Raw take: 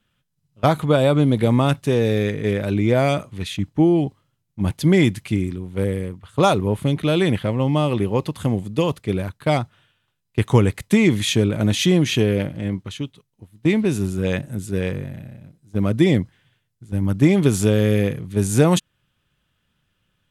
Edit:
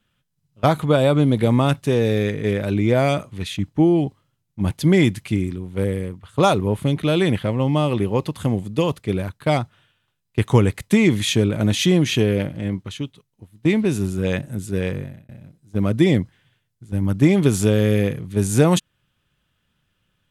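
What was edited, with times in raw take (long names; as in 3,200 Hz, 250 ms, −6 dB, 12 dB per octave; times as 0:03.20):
0:15.01–0:15.29: fade out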